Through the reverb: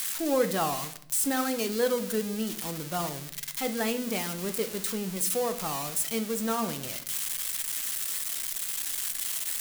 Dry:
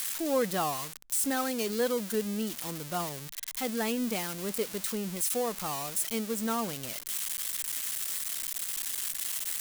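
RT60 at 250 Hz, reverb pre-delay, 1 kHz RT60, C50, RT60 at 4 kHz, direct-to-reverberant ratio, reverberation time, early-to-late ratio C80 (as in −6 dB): 1.0 s, 6 ms, 0.55 s, 14.0 dB, 0.50 s, 7.5 dB, 0.60 s, 17.5 dB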